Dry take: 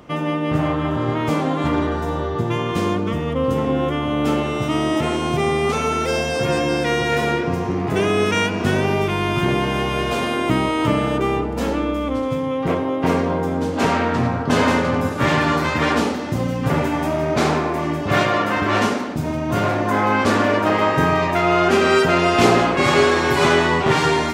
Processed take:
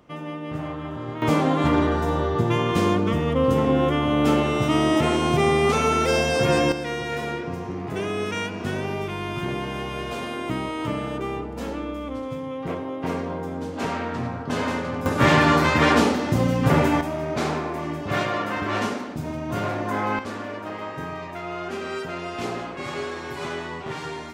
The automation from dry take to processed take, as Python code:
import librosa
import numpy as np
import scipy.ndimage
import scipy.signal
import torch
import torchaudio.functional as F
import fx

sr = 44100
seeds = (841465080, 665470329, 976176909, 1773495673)

y = fx.gain(x, sr, db=fx.steps((0.0, -11.0), (1.22, 0.0), (6.72, -9.0), (15.06, 1.0), (17.01, -7.0), (20.19, -15.5)))